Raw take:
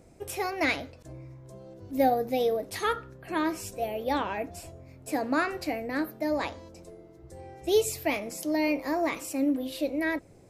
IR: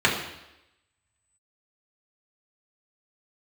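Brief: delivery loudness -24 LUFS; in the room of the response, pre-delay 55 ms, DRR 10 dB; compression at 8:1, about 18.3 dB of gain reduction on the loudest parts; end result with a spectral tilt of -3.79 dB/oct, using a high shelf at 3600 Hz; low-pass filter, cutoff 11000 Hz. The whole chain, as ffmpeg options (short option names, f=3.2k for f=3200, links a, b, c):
-filter_complex "[0:a]lowpass=11k,highshelf=f=3.6k:g=7,acompressor=threshold=-38dB:ratio=8,asplit=2[a][b];[1:a]atrim=start_sample=2205,adelay=55[c];[b][c]afir=irnorm=-1:irlink=0,volume=-28.5dB[d];[a][d]amix=inputs=2:normalize=0,volume=17.5dB"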